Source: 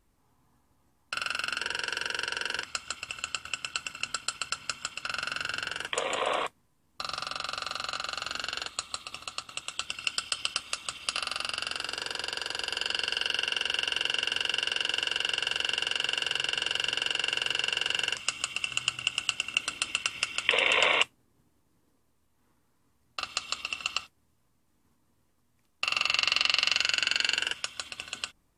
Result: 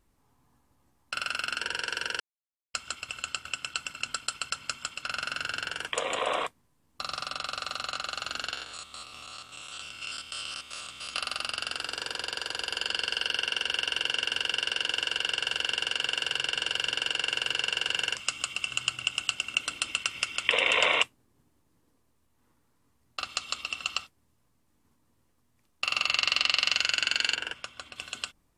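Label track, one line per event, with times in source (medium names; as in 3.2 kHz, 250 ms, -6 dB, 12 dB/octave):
2.200000	2.740000	mute
8.540000	11.140000	spectrogram pixelated in time every 100 ms
27.350000	27.960000	treble shelf 2.9 kHz -11.5 dB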